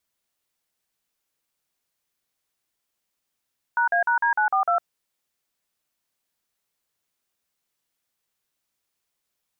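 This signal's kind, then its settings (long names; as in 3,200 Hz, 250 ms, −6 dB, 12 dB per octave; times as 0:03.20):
touch tones "#A#D942", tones 107 ms, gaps 44 ms, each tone −20.5 dBFS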